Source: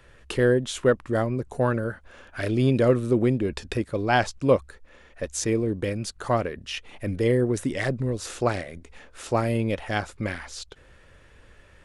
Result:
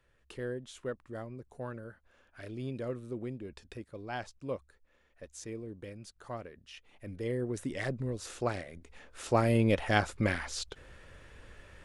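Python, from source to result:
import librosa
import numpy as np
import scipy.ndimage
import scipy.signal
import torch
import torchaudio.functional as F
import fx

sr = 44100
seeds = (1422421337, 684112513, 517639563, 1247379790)

y = fx.gain(x, sr, db=fx.line((6.77, -17.5), (7.78, -8.5), (8.7, -8.5), (9.72, 0.0)))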